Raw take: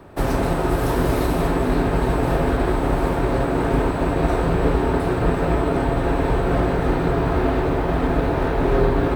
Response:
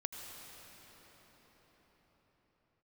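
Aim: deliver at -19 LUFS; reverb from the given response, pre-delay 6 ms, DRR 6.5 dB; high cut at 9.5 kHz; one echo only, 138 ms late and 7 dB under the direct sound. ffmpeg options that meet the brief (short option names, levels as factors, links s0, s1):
-filter_complex "[0:a]lowpass=9500,aecho=1:1:138:0.447,asplit=2[s0][s1];[1:a]atrim=start_sample=2205,adelay=6[s2];[s1][s2]afir=irnorm=-1:irlink=0,volume=0.473[s3];[s0][s3]amix=inputs=2:normalize=0"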